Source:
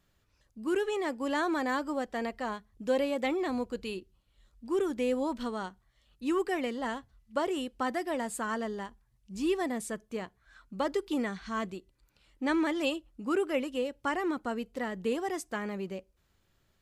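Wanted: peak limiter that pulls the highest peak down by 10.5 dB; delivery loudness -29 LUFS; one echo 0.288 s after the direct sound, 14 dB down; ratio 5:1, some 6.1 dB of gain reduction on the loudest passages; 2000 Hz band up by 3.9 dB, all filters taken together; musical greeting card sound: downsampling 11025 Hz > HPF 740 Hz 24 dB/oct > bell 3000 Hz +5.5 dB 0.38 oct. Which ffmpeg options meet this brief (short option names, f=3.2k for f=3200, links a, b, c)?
-af "equalizer=f=2k:t=o:g=4,acompressor=threshold=-30dB:ratio=5,alimiter=level_in=6.5dB:limit=-24dB:level=0:latency=1,volume=-6.5dB,aecho=1:1:288:0.2,aresample=11025,aresample=44100,highpass=f=740:w=0.5412,highpass=f=740:w=1.3066,equalizer=f=3k:t=o:w=0.38:g=5.5,volume=15dB"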